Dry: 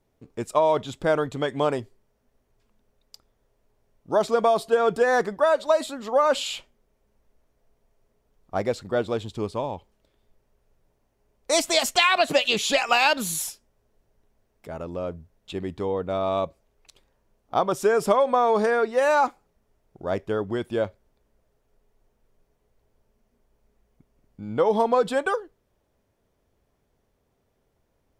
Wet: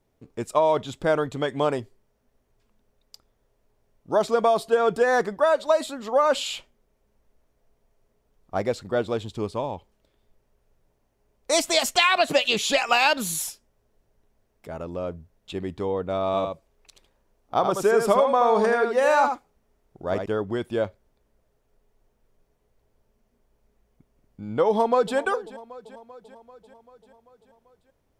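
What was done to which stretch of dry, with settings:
16.26–20.26 echo 79 ms -6 dB
24.68–25.17 echo throw 0.39 s, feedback 65%, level -17.5 dB

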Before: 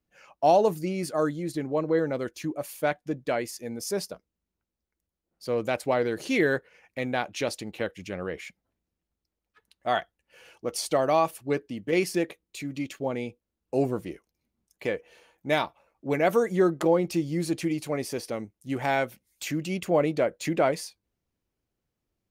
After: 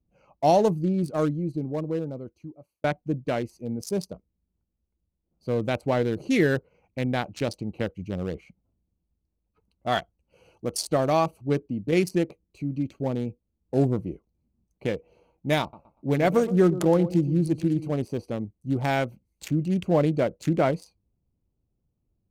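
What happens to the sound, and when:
1.16–2.84 fade out
9.92–10.73 high shelf 3400 Hz +8 dB
15.61–17.92 feedback echo 0.12 s, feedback 28%, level -13.5 dB
whole clip: Wiener smoothing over 25 samples; tone controls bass +10 dB, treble +7 dB

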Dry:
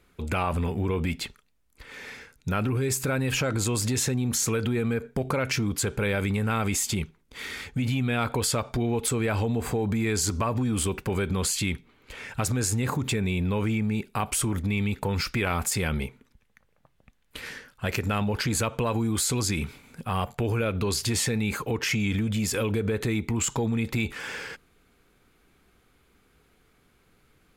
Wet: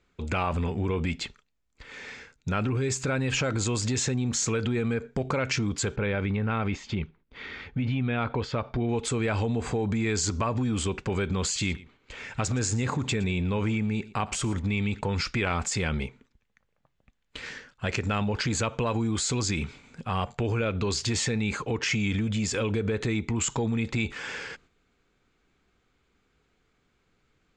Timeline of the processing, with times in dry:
5.96–8.89 air absorption 260 m
11.44–15.01 echo 0.115 s -19.5 dB
whole clip: Chebyshev low-pass 7400 Hz, order 4; gate -54 dBFS, range -6 dB

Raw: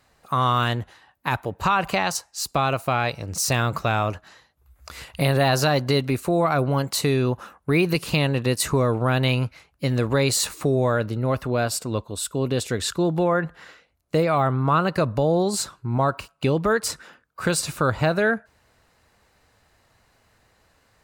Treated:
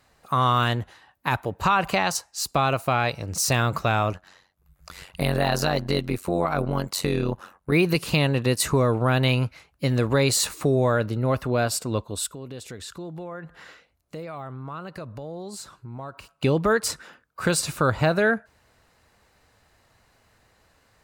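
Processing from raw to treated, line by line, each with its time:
4.13–7.72 AM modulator 92 Hz, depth 70%
12.26–16.29 compressor 2.5:1, threshold -41 dBFS

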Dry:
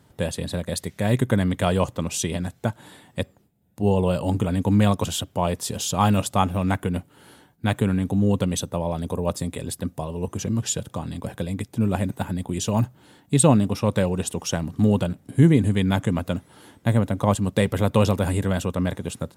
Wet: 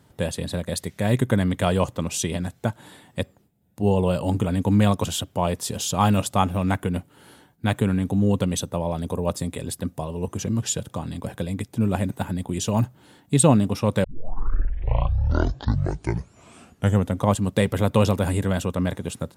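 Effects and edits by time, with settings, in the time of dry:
14.04 tape start 3.23 s

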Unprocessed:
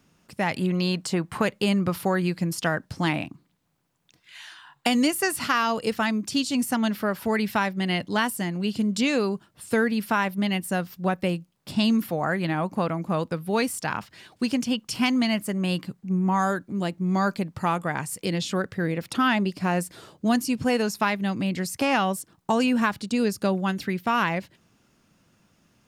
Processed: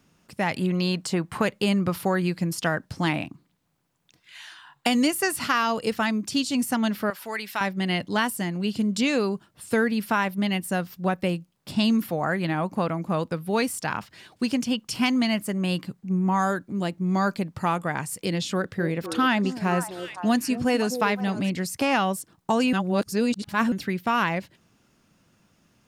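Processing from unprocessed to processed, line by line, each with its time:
7.1–7.61 HPF 1300 Hz 6 dB/oct
18.36–21.5 delay with a stepping band-pass 0.257 s, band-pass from 380 Hz, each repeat 1.4 oct, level -4.5 dB
22.73–23.72 reverse

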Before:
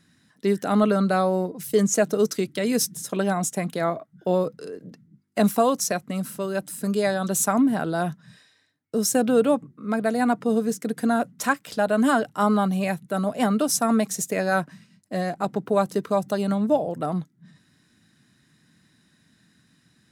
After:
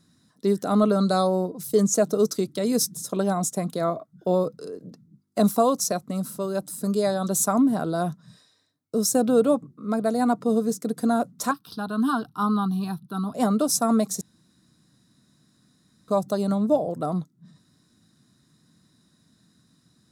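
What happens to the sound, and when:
1–1.27 spectral gain 3200–10000 Hz +8 dB
11.51–13.34 fixed phaser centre 2100 Hz, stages 6
14.21–16.08 room tone
whole clip: band shelf 2200 Hz -10 dB 1.2 oct; notch 850 Hz, Q 12

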